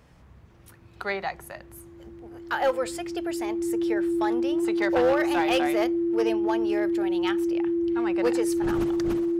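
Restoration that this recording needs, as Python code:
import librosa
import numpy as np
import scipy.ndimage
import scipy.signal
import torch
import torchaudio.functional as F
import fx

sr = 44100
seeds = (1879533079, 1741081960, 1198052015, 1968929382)

y = fx.fix_declip(x, sr, threshold_db=-16.5)
y = fx.notch(y, sr, hz=340.0, q=30.0)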